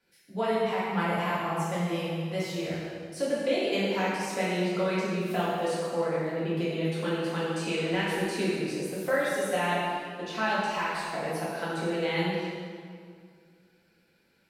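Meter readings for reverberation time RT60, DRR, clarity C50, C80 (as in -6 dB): 2.1 s, -9.0 dB, -2.5 dB, -0.5 dB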